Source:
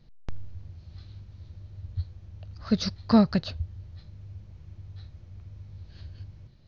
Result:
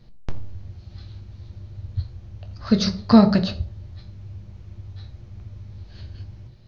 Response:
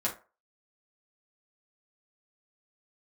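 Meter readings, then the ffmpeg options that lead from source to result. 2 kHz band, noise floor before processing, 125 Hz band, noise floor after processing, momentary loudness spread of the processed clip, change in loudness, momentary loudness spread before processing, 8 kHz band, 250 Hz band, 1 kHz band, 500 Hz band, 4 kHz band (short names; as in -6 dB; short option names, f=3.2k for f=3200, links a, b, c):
+6.5 dB, -51 dBFS, +6.0 dB, -45 dBFS, 25 LU, +7.0 dB, 24 LU, n/a, +6.5 dB, +7.0 dB, +6.5 dB, +6.5 dB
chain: -filter_complex "[0:a]asplit=2[a][b];[1:a]atrim=start_sample=2205,asetrate=24696,aresample=44100[c];[b][c]afir=irnorm=-1:irlink=0,volume=-12.5dB[d];[a][d]amix=inputs=2:normalize=0,volume=3.5dB"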